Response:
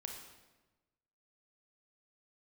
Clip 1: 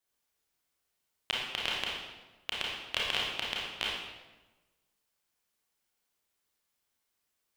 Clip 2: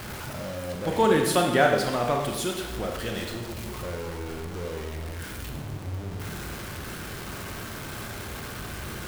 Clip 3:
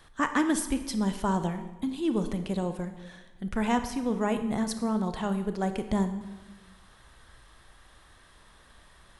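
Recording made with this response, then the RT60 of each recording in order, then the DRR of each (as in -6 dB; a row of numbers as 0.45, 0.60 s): 2; 1.1, 1.1, 1.1 s; -4.5, 2.0, 8.5 dB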